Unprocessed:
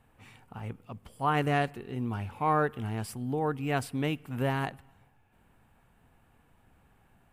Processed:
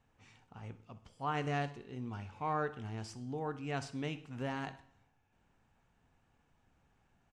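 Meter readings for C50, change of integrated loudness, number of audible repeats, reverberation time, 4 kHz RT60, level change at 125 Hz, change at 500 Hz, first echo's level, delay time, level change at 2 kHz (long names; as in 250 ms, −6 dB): 14.5 dB, −8.5 dB, 2, 0.55 s, 0.50 s, −8.5 dB, −8.5 dB, −18.5 dB, 63 ms, −8.0 dB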